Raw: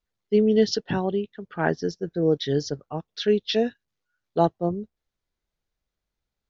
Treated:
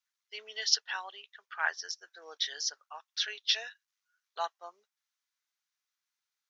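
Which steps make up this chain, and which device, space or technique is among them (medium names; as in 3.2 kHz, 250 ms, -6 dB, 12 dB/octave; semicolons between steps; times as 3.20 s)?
headphones lying on a table (high-pass 1.1 kHz 24 dB/octave; peaking EQ 5.9 kHz +5.5 dB 0.43 oct)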